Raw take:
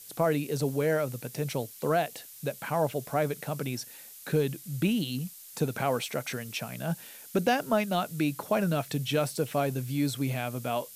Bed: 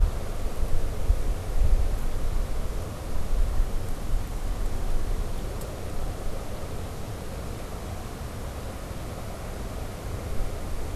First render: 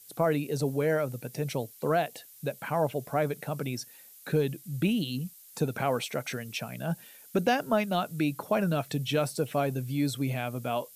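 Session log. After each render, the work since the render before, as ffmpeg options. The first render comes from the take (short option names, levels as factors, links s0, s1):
-af "afftdn=nr=7:nf=-48"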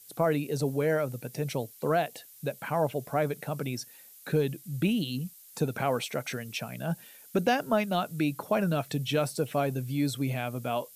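-af anull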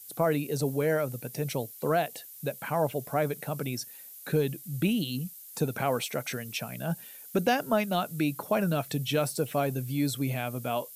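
-af "highshelf=f=9900:g=8.5"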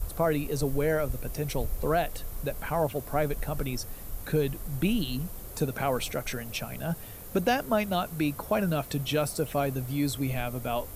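-filter_complex "[1:a]volume=0.266[s0];[0:a][s0]amix=inputs=2:normalize=0"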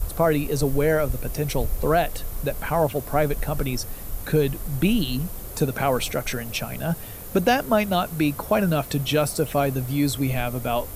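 -af "volume=2"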